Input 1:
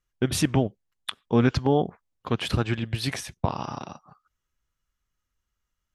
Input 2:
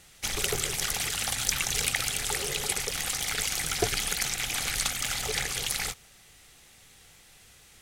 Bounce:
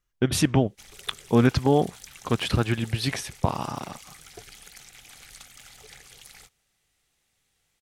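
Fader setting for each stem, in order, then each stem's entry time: +1.5, −18.0 decibels; 0.00, 0.55 seconds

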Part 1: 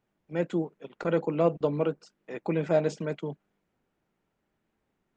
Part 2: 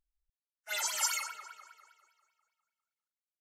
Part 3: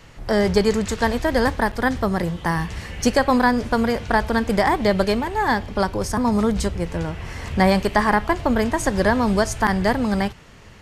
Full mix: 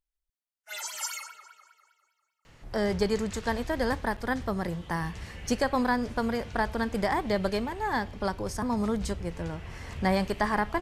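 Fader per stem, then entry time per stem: muted, −3.0 dB, −9.0 dB; muted, 0.00 s, 2.45 s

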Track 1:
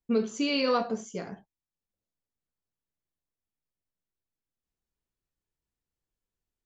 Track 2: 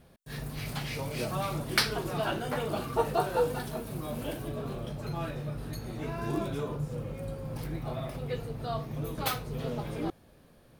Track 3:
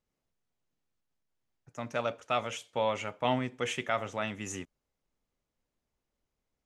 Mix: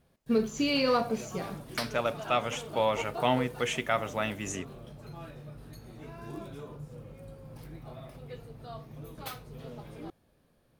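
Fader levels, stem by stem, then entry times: 0.0, −9.5, +2.5 decibels; 0.20, 0.00, 0.00 seconds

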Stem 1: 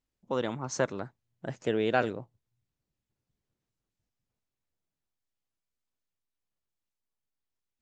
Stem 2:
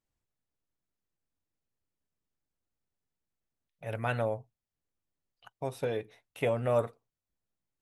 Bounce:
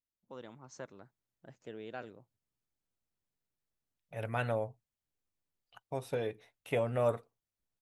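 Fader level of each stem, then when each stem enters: −17.5, −2.5 decibels; 0.00, 0.30 seconds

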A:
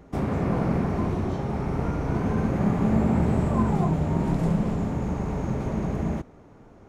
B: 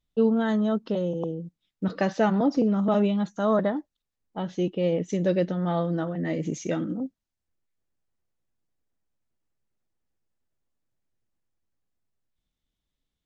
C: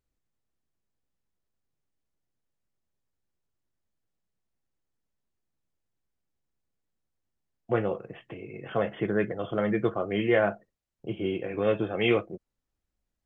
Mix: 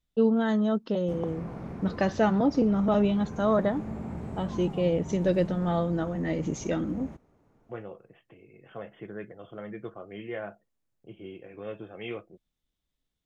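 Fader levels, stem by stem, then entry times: −14.5, −1.0, −13.0 decibels; 0.95, 0.00, 0.00 seconds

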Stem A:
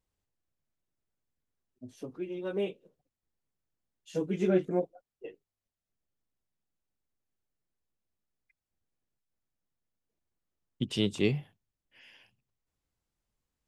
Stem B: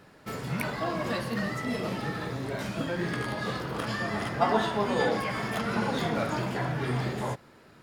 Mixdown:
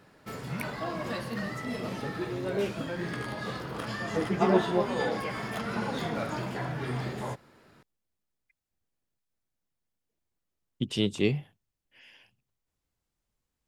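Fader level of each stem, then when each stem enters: +1.5, −3.5 decibels; 0.00, 0.00 seconds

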